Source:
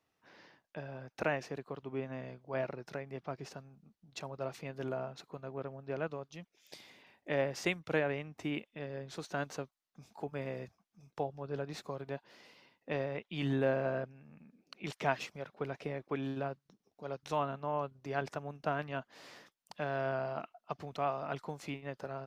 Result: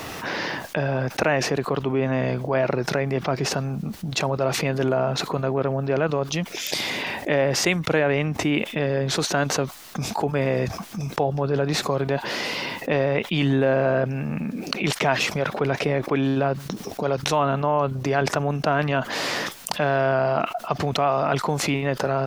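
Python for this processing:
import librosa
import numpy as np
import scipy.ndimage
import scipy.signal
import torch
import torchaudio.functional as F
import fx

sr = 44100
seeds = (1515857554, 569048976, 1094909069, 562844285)

y = fx.env_flatten(x, sr, amount_pct=70)
y = y * librosa.db_to_amplitude(9.0)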